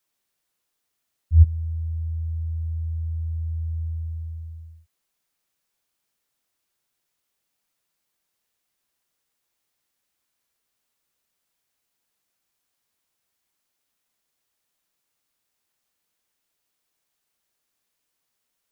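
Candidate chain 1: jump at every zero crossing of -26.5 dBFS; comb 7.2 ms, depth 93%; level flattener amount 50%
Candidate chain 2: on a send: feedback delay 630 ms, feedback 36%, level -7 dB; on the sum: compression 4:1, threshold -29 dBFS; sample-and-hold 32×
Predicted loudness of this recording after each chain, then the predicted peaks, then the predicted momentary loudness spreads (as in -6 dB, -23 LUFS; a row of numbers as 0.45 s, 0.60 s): -19.5 LUFS, -34.0 LUFS; -9.0 dBFS, -21.5 dBFS; 4 LU, 16 LU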